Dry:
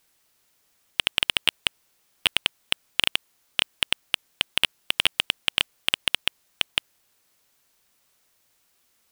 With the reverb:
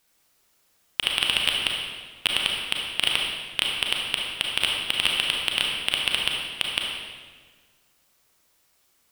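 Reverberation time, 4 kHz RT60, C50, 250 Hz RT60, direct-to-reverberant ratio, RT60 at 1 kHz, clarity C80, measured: 1.6 s, 1.3 s, 0.0 dB, 1.8 s, −1.5 dB, 1.5 s, 2.0 dB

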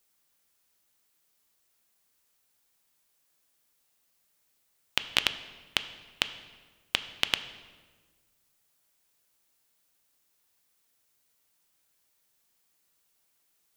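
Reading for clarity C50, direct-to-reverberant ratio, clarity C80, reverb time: 13.0 dB, 10.0 dB, 14.0 dB, 1.5 s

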